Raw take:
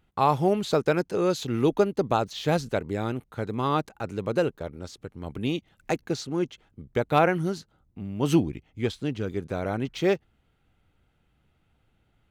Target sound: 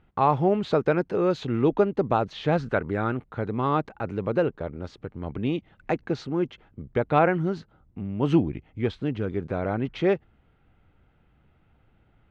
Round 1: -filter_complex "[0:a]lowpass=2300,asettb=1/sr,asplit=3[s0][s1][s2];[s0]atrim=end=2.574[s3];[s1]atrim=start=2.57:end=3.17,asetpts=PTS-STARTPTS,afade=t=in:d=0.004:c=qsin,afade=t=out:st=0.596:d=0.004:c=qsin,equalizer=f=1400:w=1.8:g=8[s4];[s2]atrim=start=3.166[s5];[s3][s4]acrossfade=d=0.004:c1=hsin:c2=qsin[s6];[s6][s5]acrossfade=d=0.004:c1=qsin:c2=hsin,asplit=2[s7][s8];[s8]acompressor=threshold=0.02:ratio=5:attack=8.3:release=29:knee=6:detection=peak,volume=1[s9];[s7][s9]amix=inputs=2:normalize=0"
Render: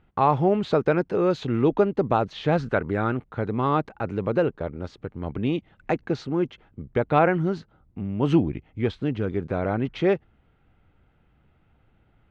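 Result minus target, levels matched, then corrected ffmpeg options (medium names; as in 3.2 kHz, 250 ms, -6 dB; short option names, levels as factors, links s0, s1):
compression: peak gain reduction -7.5 dB
-filter_complex "[0:a]lowpass=2300,asettb=1/sr,asplit=3[s0][s1][s2];[s0]atrim=end=2.574[s3];[s1]atrim=start=2.57:end=3.17,asetpts=PTS-STARTPTS,afade=t=in:d=0.004:c=qsin,afade=t=out:st=0.596:d=0.004:c=qsin,equalizer=f=1400:w=1.8:g=8[s4];[s2]atrim=start=3.166[s5];[s3][s4]acrossfade=d=0.004:c1=hsin:c2=qsin[s6];[s6][s5]acrossfade=d=0.004:c1=qsin:c2=hsin,asplit=2[s7][s8];[s8]acompressor=threshold=0.00668:ratio=5:attack=8.3:release=29:knee=6:detection=peak,volume=1[s9];[s7][s9]amix=inputs=2:normalize=0"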